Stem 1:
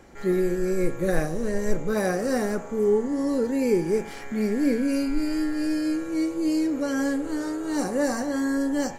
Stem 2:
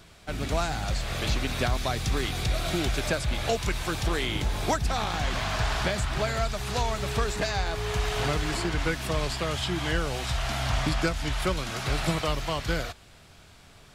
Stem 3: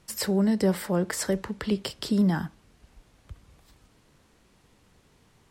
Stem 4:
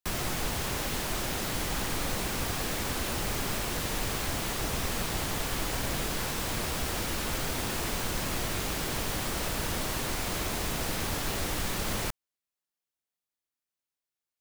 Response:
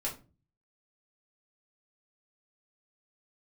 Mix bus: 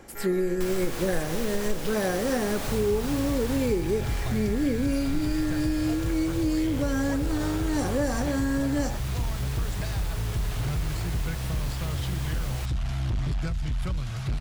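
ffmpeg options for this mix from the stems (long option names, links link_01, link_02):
-filter_complex "[0:a]volume=2dB[link_01];[1:a]lowshelf=frequency=190:width_type=q:width=1.5:gain=13.5,asoftclip=type=tanh:threshold=-14dB,adelay=2400,volume=-8dB[link_02];[2:a]highpass=frequency=1300:width=0.5412,highpass=frequency=1300:width=1.3066,equalizer=frequency=5500:width=1.1:gain=-10.5,aeval=exprs='val(0)*sgn(sin(2*PI*120*n/s))':channel_layout=same,volume=-3dB[link_03];[3:a]adelay=550,volume=-0.5dB,afade=type=out:start_time=3.55:duration=0.31:silence=0.446684[link_04];[link_01][link_02][link_03][link_04]amix=inputs=4:normalize=0,acompressor=threshold=-23dB:ratio=3"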